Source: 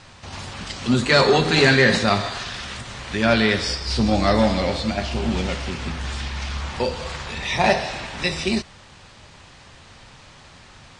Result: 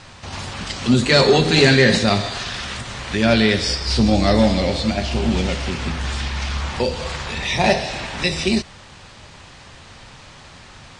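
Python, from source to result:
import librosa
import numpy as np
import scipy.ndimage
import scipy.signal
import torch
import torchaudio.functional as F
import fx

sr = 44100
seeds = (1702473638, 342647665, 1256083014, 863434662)

y = fx.dynamic_eq(x, sr, hz=1200.0, q=0.91, threshold_db=-33.0, ratio=4.0, max_db=-7)
y = F.gain(torch.from_numpy(y), 4.0).numpy()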